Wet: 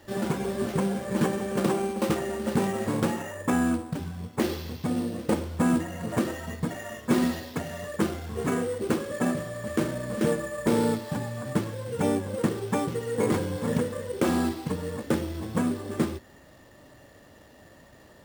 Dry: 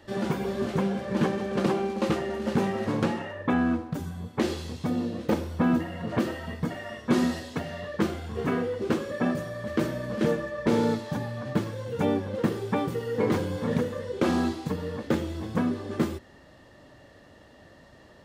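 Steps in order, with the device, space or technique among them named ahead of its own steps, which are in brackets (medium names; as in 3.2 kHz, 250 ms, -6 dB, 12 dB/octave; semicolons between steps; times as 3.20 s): early companding sampler (sample-rate reducer 8.8 kHz, jitter 0%; companded quantiser 6-bit)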